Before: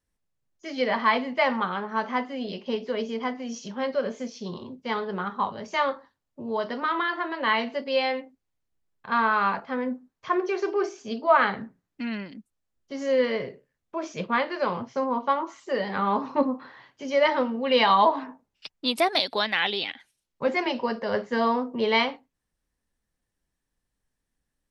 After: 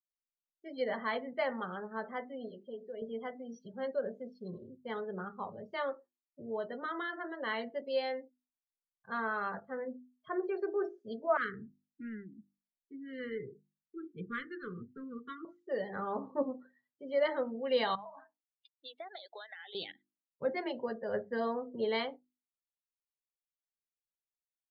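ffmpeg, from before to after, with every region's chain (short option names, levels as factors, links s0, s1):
-filter_complex "[0:a]asettb=1/sr,asplit=3[s0][s1][s2];[s0]atrim=end=2.484[s3];[s1]atrim=start=2.48:end=3.02,asetpts=PTS-STARTPTS,afade=t=in:d=0.004:c=qsin,afade=t=out:st=0.536:d=0.004:c=qsin,acompressor=threshold=0.01:ratio=1.5:attack=3.2:release=140:knee=1:detection=peak,lowshelf=f=210:g=-5.5[s4];[s2]atrim=start=3.016[s5];[s3][s4]acrossfade=d=0.004:c1=hsin:c2=qsin[s6];[s6][s5]acrossfade=d=0.004:c1=qsin:c2=hsin,asettb=1/sr,asplit=3[s7][s8][s9];[s7]atrim=end=11.374[s10];[s8]atrim=start=11.37:end=15.45,asetpts=PTS-STARTPTS,afade=t=in:d=0.004:c=qsin,afade=t=out:st=4.076:d=0.004:c=qsin,adynamicsmooth=sensitivity=5:basefreq=1700,asuperstop=centerf=730:order=12:qfactor=1[s11];[s9]atrim=start=15.446[s12];[s10][s11]acrossfade=d=0.004:c1=hsin:c2=qsin[s13];[s13][s12]acrossfade=d=0.004:c1=qsin:c2=hsin,asettb=1/sr,asplit=3[s14][s15][s16];[s14]atrim=end=17.954[s17];[s15]atrim=start=17.95:end=19.75,asetpts=PTS-STARTPTS,afade=t=in:d=0.004:c=qsin,afade=t=out:st=1.796:d=0.004:c=qsin,highpass=780,lowpass=3200,acompressor=threshold=0.0316:ratio=10:attack=3.2:release=140:knee=1:detection=peak[s18];[s16]atrim=start=19.746[s19];[s17][s18]acrossfade=d=0.004:c1=hsin:c2=qsin[s20];[s20][s19]acrossfade=d=0.004:c1=qsin:c2=hsin,equalizer=f=250:t=o:w=0.67:g=-6,equalizer=f=1000:t=o:w=0.67:g=-11,equalizer=f=2500:t=o:w=0.67:g=-10,equalizer=f=6300:t=o:w=0.67:g=-11,afftdn=nr=31:nf=-42,bandreject=f=50:t=h:w=6,bandreject=f=100:t=h:w=6,bandreject=f=150:t=h:w=6,bandreject=f=200:t=h:w=6,bandreject=f=250:t=h:w=6,bandreject=f=300:t=h:w=6,bandreject=f=350:t=h:w=6,volume=0.531"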